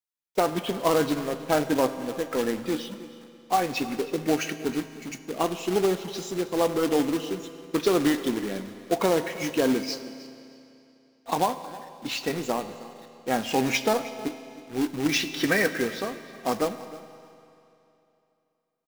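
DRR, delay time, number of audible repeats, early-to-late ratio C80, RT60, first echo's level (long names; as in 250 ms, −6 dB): 10.0 dB, 315 ms, 1, 11.5 dB, 2.9 s, −18.0 dB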